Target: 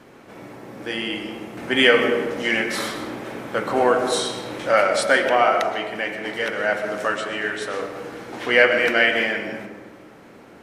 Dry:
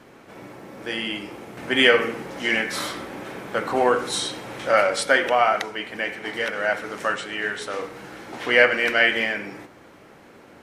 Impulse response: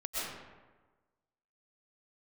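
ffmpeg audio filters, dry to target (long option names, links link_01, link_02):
-filter_complex "[0:a]asplit=2[link_01][link_02];[link_02]equalizer=frequency=270:width=0.39:gain=7.5[link_03];[1:a]atrim=start_sample=2205[link_04];[link_03][link_04]afir=irnorm=-1:irlink=0,volume=-12dB[link_05];[link_01][link_05]amix=inputs=2:normalize=0,volume=-1dB"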